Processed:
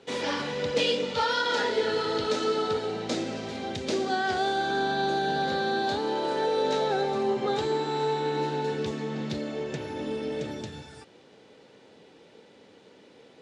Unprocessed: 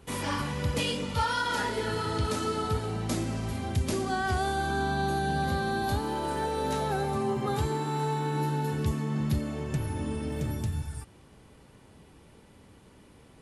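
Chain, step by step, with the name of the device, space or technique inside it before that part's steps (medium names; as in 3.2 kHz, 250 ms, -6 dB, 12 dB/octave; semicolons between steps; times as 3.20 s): full-range speaker at full volume (loudspeaker Doppler distortion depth 0.11 ms; cabinet simulation 270–6600 Hz, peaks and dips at 480 Hz +7 dB, 1.1 kHz -7 dB, 3.8 kHz +5 dB); trim +3 dB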